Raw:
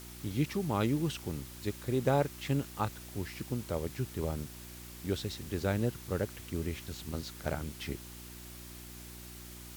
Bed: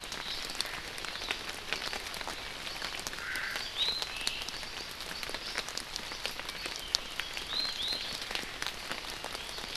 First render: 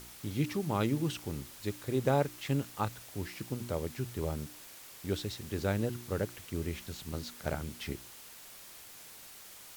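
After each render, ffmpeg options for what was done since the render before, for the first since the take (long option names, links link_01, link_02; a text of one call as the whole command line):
ffmpeg -i in.wav -af "bandreject=frequency=60:width_type=h:width=4,bandreject=frequency=120:width_type=h:width=4,bandreject=frequency=180:width_type=h:width=4,bandreject=frequency=240:width_type=h:width=4,bandreject=frequency=300:width_type=h:width=4,bandreject=frequency=360:width_type=h:width=4" out.wav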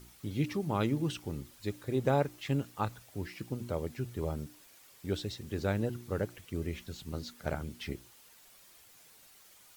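ffmpeg -i in.wav -af "afftdn=noise_reduction=9:noise_floor=-51" out.wav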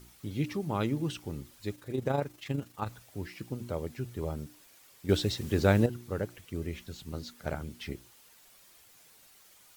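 ffmpeg -i in.wav -filter_complex "[0:a]asettb=1/sr,asplit=3[link_01][link_02][link_03];[link_01]atrim=end=1.754[link_04];[link_02]atrim=start=1.75:end=2.88,asetpts=PTS-STARTPTS,afade=type=in:duration=0.004:curve=qsin,afade=type=out:start_time=1.126:duration=0.004:curve=qsin,tremolo=f=25:d=0.519[link_05];[link_03]atrim=start=2.876[link_06];[link_04][link_05]acrossfade=duration=0.004:curve1=hsin:curve2=qsin[link_07];[link_07][link_06]acrossfade=duration=0.004:curve1=qsin:curve2=hsin,asplit=3[link_08][link_09][link_10];[link_08]atrim=end=5.092[link_11];[link_09]atrim=start=5.088:end=5.862,asetpts=PTS-STARTPTS,volume=8dB[link_12];[link_10]atrim=start=5.858[link_13];[link_11][link_12]acrossfade=duration=0.004:curve1=hsin:curve2=hsin[link_14];[link_14][link_13]acrossfade=duration=0.004:curve1=hsin:curve2=hsin" out.wav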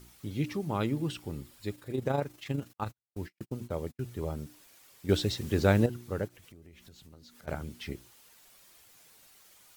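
ffmpeg -i in.wav -filter_complex "[0:a]asettb=1/sr,asplit=3[link_01][link_02][link_03];[link_01]atrim=end=0.784[link_04];[link_02]atrim=start=0.78:end=2.03,asetpts=PTS-STARTPTS,afade=type=in:duration=0.004:curve=qsin,afade=type=out:start_time=1.246:duration=0.004:curve=qsin,bandreject=frequency=6100:width=12[link_05];[link_03]atrim=start=2.026[link_06];[link_04][link_05]acrossfade=duration=0.004:curve1=hsin:curve2=qsin[link_07];[link_07][link_06]acrossfade=duration=0.004:curve1=qsin:curve2=hsin,asettb=1/sr,asplit=3[link_08][link_09][link_10];[link_08]atrim=end=2.734[link_11];[link_09]atrim=start=2.73:end=4.05,asetpts=PTS-STARTPTS,afade=type=in:duration=0.004:curve=qsin,afade=type=out:start_time=1.316:duration=0.004:curve=qsin,agate=range=-47dB:threshold=-43dB:ratio=16:release=100:detection=peak[link_12];[link_10]atrim=start=4.046[link_13];[link_11][link_12]acrossfade=duration=0.004:curve1=hsin:curve2=qsin[link_14];[link_14][link_13]acrossfade=duration=0.004:curve1=qsin:curve2=hsin,asplit=3[link_15][link_16][link_17];[link_15]afade=type=out:start_time=6.27:duration=0.02[link_18];[link_16]acompressor=threshold=-51dB:ratio=5:attack=3.2:release=140:knee=1:detection=peak,afade=type=in:start_time=6.27:duration=0.02,afade=type=out:start_time=7.47:duration=0.02[link_19];[link_17]afade=type=in:start_time=7.47:duration=0.02[link_20];[link_18][link_19][link_20]amix=inputs=3:normalize=0" out.wav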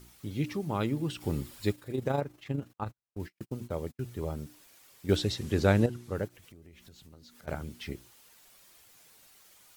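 ffmpeg -i in.wav -filter_complex "[0:a]asplit=3[link_01][link_02][link_03];[link_01]afade=type=out:start_time=1.2:duration=0.02[link_04];[link_02]acontrast=80,afade=type=in:start_time=1.2:duration=0.02,afade=type=out:start_time=1.71:duration=0.02[link_05];[link_03]afade=type=in:start_time=1.71:duration=0.02[link_06];[link_04][link_05][link_06]amix=inputs=3:normalize=0,asettb=1/sr,asplit=3[link_07][link_08][link_09];[link_07]atrim=end=2.214[link_10];[link_08]atrim=start=2.21:end=3.2,asetpts=PTS-STARTPTS,afade=type=in:duration=0.004:curve=qsin,afade=type=out:start_time=0.986:duration=0.004:curve=qsin,highshelf=frequency=2400:gain=-9.5[link_11];[link_09]atrim=start=3.196[link_12];[link_10][link_11]acrossfade=duration=0.004:curve1=hsin:curve2=qsin[link_13];[link_13][link_12]acrossfade=duration=0.004:curve1=qsin:curve2=hsin,asettb=1/sr,asplit=3[link_14][link_15][link_16];[link_14]atrim=end=5.164[link_17];[link_15]atrim=start=5.16:end=6.15,asetpts=PTS-STARTPTS,afade=type=in:duration=0.004:curve=qsin,afade=type=out:start_time=0.986:duration=0.004:curve=qsin,lowpass=12000[link_18];[link_16]atrim=start=6.146[link_19];[link_17][link_18]acrossfade=duration=0.004:curve1=hsin:curve2=qsin[link_20];[link_20][link_19]acrossfade=duration=0.004:curve1=qsin:curve2=hsin" out.wav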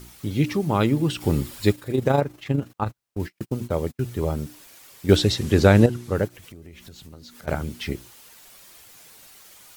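ffmpeg -i in.wav -af "volume=10dB,alimiter=limit=-1dB:level=0:latency=1" out.wav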